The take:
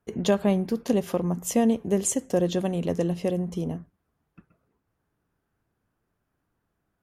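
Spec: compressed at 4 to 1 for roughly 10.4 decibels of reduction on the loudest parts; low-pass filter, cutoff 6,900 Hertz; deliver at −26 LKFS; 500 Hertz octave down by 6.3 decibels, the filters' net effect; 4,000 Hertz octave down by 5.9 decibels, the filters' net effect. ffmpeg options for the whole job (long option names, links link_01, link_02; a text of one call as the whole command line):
ffmpeg -i in.wav -af "lowpass=6900,equalizer=frequency=500:width_type=o:gain=-8,equalizer=frequency=4000:width_type=o:gain=-7.5,acompressor=threshold=-32dB:ratio=4,volume=10dB" out.wav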